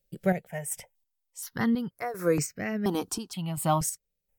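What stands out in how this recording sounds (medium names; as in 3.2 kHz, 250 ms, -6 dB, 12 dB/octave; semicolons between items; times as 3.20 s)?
chopped level 1.4 Hz, depth 60%, duty 45%; notches that jump at a steady rate 2.1 Hz 280–3400 Hz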